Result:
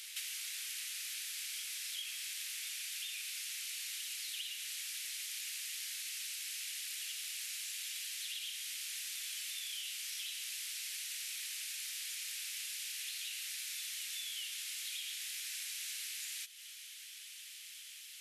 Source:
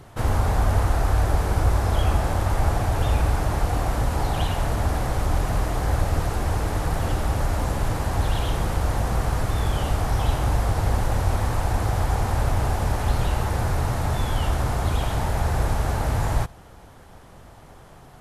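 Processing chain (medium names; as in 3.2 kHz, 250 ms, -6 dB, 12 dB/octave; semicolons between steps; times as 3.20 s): steep high-pass 2.4 kHz 36 dB/octave; compression 12:1, threshold -50 dBFS, peak gain reduction 17.5 dB; on a send: reverse echo 399 ms -8 dB; on the sum: trim +10 dB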